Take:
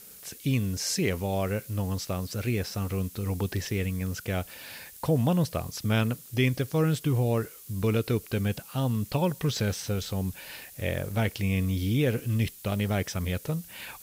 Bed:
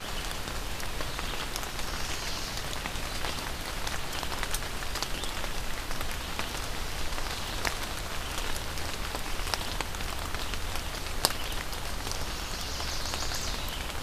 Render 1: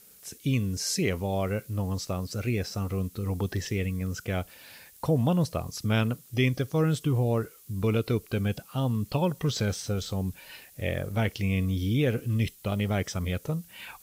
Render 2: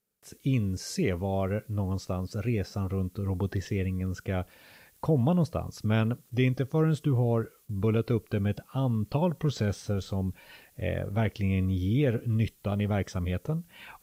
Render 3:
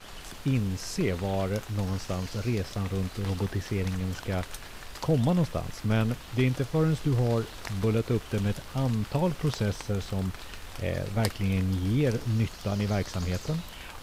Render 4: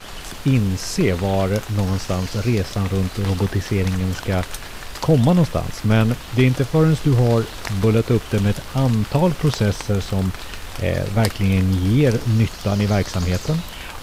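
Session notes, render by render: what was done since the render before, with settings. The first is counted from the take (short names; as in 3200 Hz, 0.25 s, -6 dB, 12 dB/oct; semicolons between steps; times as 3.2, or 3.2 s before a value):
noise print and reduce 6 dB
gate with hold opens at -43 dBFS; high shelf 2400 Hz -9.5 dB
add bed -9 dB
gain +9.5 dB; limiter -2 dBFS, peak gain reduction 2.5 dB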